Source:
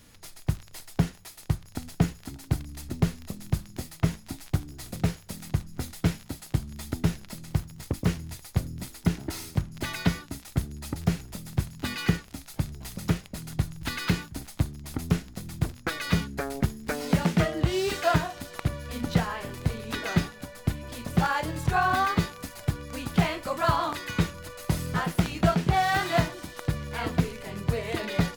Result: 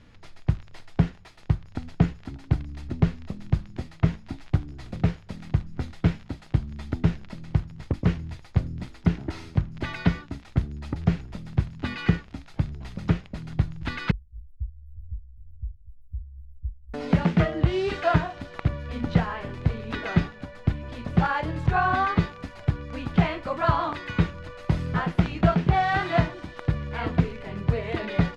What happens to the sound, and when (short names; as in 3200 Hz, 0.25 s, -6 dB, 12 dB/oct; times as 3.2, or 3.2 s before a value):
14.11–16.94 inverse Chebyshev band-stop 350–4400 Hz, stop band 80 dB
whole clip: LPF 3000 Hz 12 dB/oct; low shelf 130 Hz +4.5 dB; gain +1 dB